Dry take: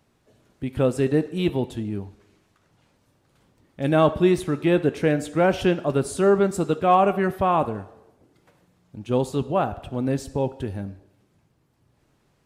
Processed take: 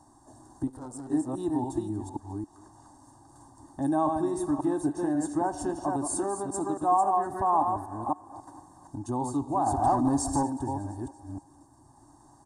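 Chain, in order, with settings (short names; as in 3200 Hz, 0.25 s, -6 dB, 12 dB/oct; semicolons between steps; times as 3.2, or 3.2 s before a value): reverse delay 0.271 s, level -5 dB; compressor 2.5:1, threshold -41 dBFS, peak gain reduction 18.5 dB; 9.66–10.43 sample leveller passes 2; comb 1.1 ms, depth 89%; 0.67–1.1 tube stage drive 44 dB, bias 0.65; EQ curve 130 Hz 0 dB, 190 Hz -10 dB, 290 Hz +14 dB, 580 Hz +3 dB, 830 Hz +12 dB, 1500 Hz +3 dB, 2400 Hz -27 dB, 4200 Hz -3 dB, 8900 Hz +15 dB, 13000 Hz -8 dB; on a send: thinning echo 0.234 s, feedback 62%, high-pass 530 Hz, level -18.5 dB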